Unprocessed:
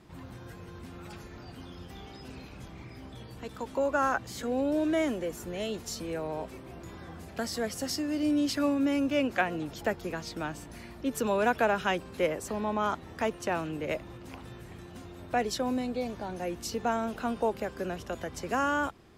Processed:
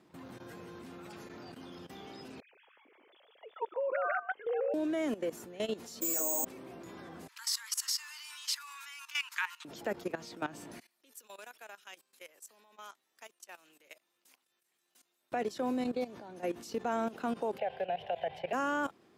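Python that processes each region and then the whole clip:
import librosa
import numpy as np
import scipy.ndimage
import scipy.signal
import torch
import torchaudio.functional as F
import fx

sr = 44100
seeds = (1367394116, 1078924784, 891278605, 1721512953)

y = fx.chain(x, sr, fx.sine_speech(),
    fx.echo_single(ms=150, db=-3.5), at=(2.4, 4.74))
y = fx.chain(y, sr, fx.comb(ms=3.5, depth=0.87),
    fx.resample_bad(factor=6, down='none', up='zero_stuff'),
    fx.ensemble(), at=(6.01, 6.45))
y = fx.chain(y, sr, fx.cheby1_highpass(hz=900.0, order=10),
    fx.high_shelf(hz=2600.0, db=10.0), at=(7.28, 9.65))
y = fx.chain(y, sr, fx.differentiator(),
    fx.level_steps(step_db=12), at=(10.8, 15.32))
y = fx.chain(y, sr, fx.curve_eq(hz=(160.0, 270.0, 410.0, 750.0, 1200.0, 1700.0, 3000.0, 6800.0, 11000.0), db=(0, -24, -5, 14, -15, 1, 8, -25, -18)),
    fx.band_squash(depth_pct=40), at=(17.58, 18.53))
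y = scipy.signal.sosfilt(scipy.signal.butter(2, 260.0, 'highpass', fs=sr, output='sos'), y)
y = fx.low_shelf(y, sr, hz=360.0, db=6.5)
y = fx.level_steps(y, sr, step_db=16)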